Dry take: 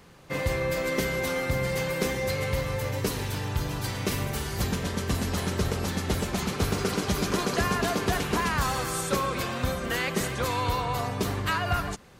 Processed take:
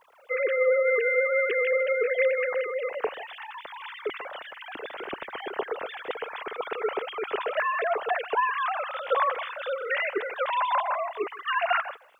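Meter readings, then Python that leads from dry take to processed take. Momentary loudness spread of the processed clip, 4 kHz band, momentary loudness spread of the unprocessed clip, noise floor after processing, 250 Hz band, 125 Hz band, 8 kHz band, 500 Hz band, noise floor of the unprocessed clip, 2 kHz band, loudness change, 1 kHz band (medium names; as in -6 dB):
14 LU, -6.5 dB, 4 LU, -46 dBFS, -16.5 dB, under -35 dB, under -35 dB, +4.0 dB, -33 dBFS, +3.0 dB, +1.0 dB, +2.5 dB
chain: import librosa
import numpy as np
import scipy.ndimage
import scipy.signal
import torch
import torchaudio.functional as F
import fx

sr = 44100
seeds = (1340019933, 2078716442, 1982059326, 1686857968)

y = fx.sine_speech(x, sr)
y = fx.quant_dither(y, sr, seeds[0], bits=12, dither='none')
y = y + 10.0 ** (-23.0 / 20.0) * np.pad(y, (int(157 * sr / 1000.0), 0))[:len(y)]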